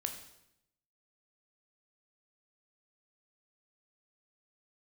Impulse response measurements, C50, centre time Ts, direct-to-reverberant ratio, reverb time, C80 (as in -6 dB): 8.5 dB, 18 ms, 4.5 dB, 0.80 s, 10.5 dB